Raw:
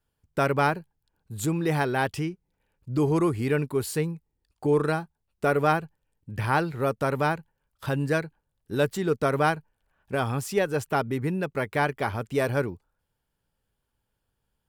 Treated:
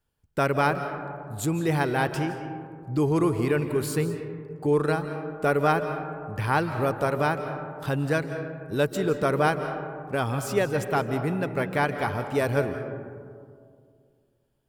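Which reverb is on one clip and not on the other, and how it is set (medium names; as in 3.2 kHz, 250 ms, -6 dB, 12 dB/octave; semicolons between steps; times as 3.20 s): algorithmic reverb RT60 2.2 s, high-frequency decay 0.3×, pre-delay 120 ms, DRR 8 dB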